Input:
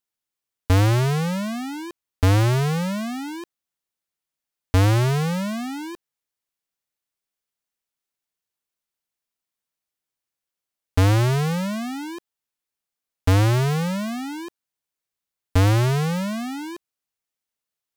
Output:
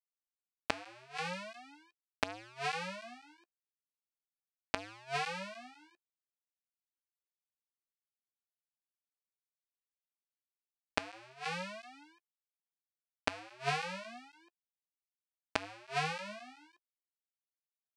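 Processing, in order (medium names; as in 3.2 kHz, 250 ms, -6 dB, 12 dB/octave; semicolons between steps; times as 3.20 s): flange 0.39 Hz, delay 8.5 ms, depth 8.4 ms, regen +9%; power-law waveshaper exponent 3; cabinet simulation 400–8400 Hz, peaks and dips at 440 Hz -8 dB, 700 Hz +7 dB, 1.6 kHz +4 dB, 2.5 kHz +9 dB, 4.5 kHz +4 dB, 6.9 kHz -4 dB; inverted gate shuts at -25 dBFS, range -31 dB; trim +12.5 dB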